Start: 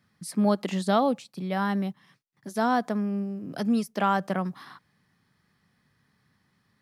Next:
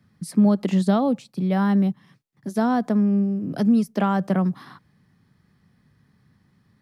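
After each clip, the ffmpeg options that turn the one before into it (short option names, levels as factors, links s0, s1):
-filter_complex "[0:a]lowshelf=f=440:g=11.5,acrossover=split=180[s0][s1];[s1]acompressor=threshold=0.126:ratio=4[s2];[s0][s2]amix=inputs=2:normalize=0"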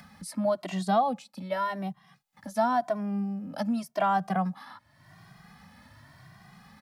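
-filter_complex "[0:a]lowshelf=f=540:t=q:w=3:g=-7.5,acompressor=mode=upward:threshold=0.0178:ratio=2.5,asplit=2[s0][s1];[s1]adelay=2,afreqshift=0.9[s2];[s0][s2]amix=inputs=2:normalize=1"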